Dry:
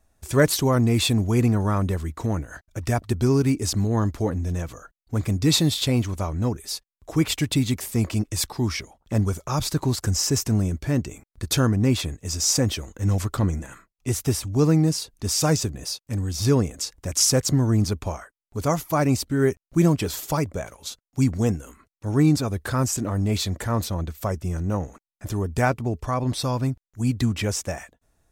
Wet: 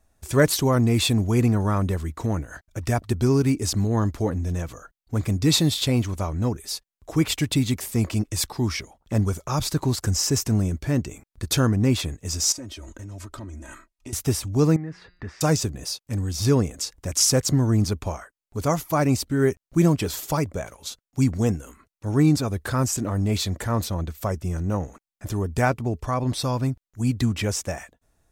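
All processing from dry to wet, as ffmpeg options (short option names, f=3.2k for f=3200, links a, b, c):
-filter_complex "[0:a]asettb=1/sr,asplit=3[a][b][c];[a]atrim=end=12.524[d];[b]atrim=start=12.52:end=14.13,asetpts=PTS-STARTPTS,afade=t=in:d=0.004:c=qsin,afade=t=out:st=1.606:d=0.004:c=qsin,aecho=1:1:3.2:0.88,atrim=end_sample=71001,acompressor=threshold=-35dB:ratio=6:attack=3.2:release=140:knee=1:detection=peak,lowpass=12k[e];[c]atrim=start=14.126[f];[d][e]acrossfade=d=0.004:c1=hsin:c2=qsin[g];[g][f]acrossfade=d=0.004:c1=qsin:c2=hsin,asettb=1/sr,asplit=3[h][i][j];[h]atrim=end=14.764[k];[i]atrim=start=14.76:end=15.41,asetpts=PTS-STARTPTS,afade=t=in:d=0.004:c=qsin,afade=t=out:st=0.646:d=0.004:c=qsin,bandreject=f=178.1:t=h:w=4,bandreject=f=356.2:t=h:w=4,bandreject=f=534.3:t=h:w=4,bandreject=f=712.4:t=h:w=4,bandreject=f=890.5:t=h:w=4,bandreject=f=1.0686k:t=h:w=4,bandreject=f=1.2467k:t=h:w=4,bandreject=f=1.4248k:t=h:w=4,bandreject=f=1.6029k:t=h:w=4,bandreject=f=1.781k:t=h:w=4,bandreject=f=1.9591k:t=h:w=4,bandreject=f=2.1372k:t=h:w=4,bandreject=f=2.3153k:t=h:w=4,bandreject=f=2.4934k:t=h:w=4,bandreject=f=2.6715k:t=h:w=4,bandreject=f=2.8496k:t=h:w=4,bandreject=f=3.0277k:t=h:w=4,bandreject=f=3.2058k:t=h:w=4,bandreject=f=3.3839k:t=h:w=4,bandreject=f=3.562k:t=h:w=4,bandreject=f=3.7401k:t=h:w=4,bandreject=f=3.9182k:t=h:w=4,bandreject=f=4.0963k:t=h:w=4,bandreject=f=4.2744k:t=h:w=4,bandreject=f=4.4525k:t=h:w=4,bandreject=f=4.6306k:t=h:w=4,bandreject=f=4.8087k:t=h:w=4,acompressor=threshold=-31dB:ratio=4:attack=3.2:release=140:knee=1:detection=peak,lowpass=f=1.8k:t=q:w=4.4[l];[j]atrim=start=15.406[m];[k][l]acrossfade=d=0.004:c1=hsin:c2=qsin[n];[n][m]acrossfade=d=0.004:c1=qsin:c2=hsin"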